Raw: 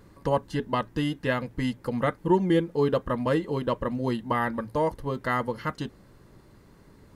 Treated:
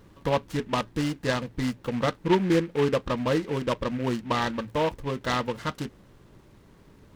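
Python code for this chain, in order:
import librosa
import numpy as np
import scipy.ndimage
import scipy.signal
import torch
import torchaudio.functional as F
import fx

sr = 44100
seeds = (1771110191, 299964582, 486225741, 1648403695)

y = fx.noise_mod_delay(x, sr, seeds[0], noise_hz=1800.0, depth_ms=0.061)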